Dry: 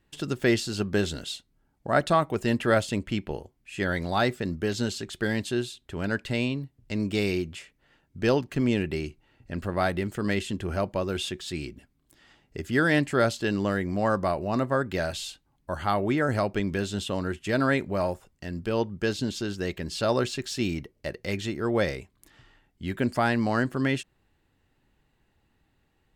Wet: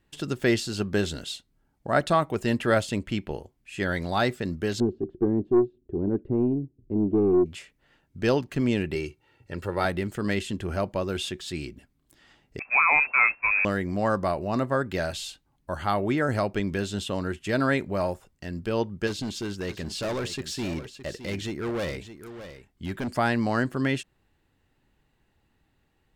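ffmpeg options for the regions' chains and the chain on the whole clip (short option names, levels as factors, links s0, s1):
-filter_complex "[0:a]asettb=1/sr,asplit=3[s0][s1][s2];[s0]atrim=end=4.804[s3];[s1]atrim=start=4.8:end=7.46,asetpts=PTS-STARTPTS,afade=t=in:d=0.004:c=qsin,afade=t=out:st=2.656:d=0.004:c=qsin,lowpass=f=360:t=q:w=3.8,aeval=exprs='(tanh(4.47*val(0)+0.2)-tanh(0.2))/4.47':c=same[s4];[s2]atrim=start=7.456[s5];[s3][s4]acrossfade=d=0.004:c1=hsin:c2=qsin[s6];[s6][s5]acrossfade=d=0.004:c1=qsin:c2=hsin,asettb=1/sr,asplit=3[s7][s8][s9];[s7]atrim=end=8.954[s10];[s8]atrim=start=8.95:end=9.85,asetpts=PTS-STARTPTS,afade=t=in:d=0.004:c=qsin,afade=t=out:st=0.896:d=0.004:c=qsin,highpass=95,aecho=1:1:2.2:0.56,atrim=end_sample=39690[s11];[s9]atrim=start=9.846[s12];[s10][s11]acrossfade=d=0.004:c1=hsin:c2=qsin[s13];[s13][s12]acrossfade=d=0.004:c1=qsin:c2=hsin,asettb=1/sr,asplit=3[s14][s15][s16];[s14]atrim=end=12.594[s17];[s15]atrim=start=12.59:end=13.65,asetpts=PTS-STARTPTS,afade=t=in:d=0.004:c=qsin,afade=t=out:st=1.056:d=0.004:c=qsin,aeval=exprs='val(0)+0.5*0.0473*sgn(val(0))':c=same,agate=range=0.112:threshold=0.0447:ratio=16:release=100:detection=peak,lowpass=f=2300:t=q:w=0.5098,lowpass=f=2300:t=q:w=0.6013,lowpass=f=2300:t=q:w=0.9,lowpass=f=2300:t=q:w=2.563,afreqshift=-2700[s18];[s16]atrim=start=13.646[s19];[s17][s18]acrossfade=d=0.004:c1=hsin:c2=qsin[s20];[s20][s19]acrossfade=d=0.004:c1=qsin:c2=hsin,asettb=1/sr,asplit=3[s21][s22][s23];[s21]atrim=end=19.074[s24];[s22]atrim=start=19.07:end=23.1,asetpts=PTS-STARTPTS,afade=t=in:d=0.004:c=qsin,afade=t=out:st=4.026:d=0.004:c=qsin,asoftclip=type=hard:threshold=0.0473,aecho=1:1:616:0.251,atrim=end_sample=177723[s25];[s23]atrim=start=23.096[s26];[s24][s25]acrossfade=d=0.004:c1=hsin:c2=qsin[s27];[s27][s26]acrossfade=d=0.004:c1=qsin:c2=hsin"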